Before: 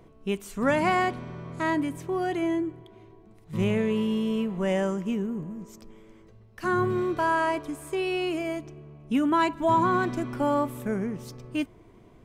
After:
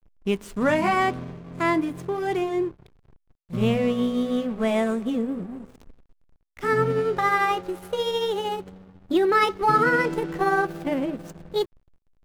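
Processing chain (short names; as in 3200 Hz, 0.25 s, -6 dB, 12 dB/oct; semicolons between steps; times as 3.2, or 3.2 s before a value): gliding pitch shift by +6 st starting unshifted; backlash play -39.5 dBFS; gain +4.5 dB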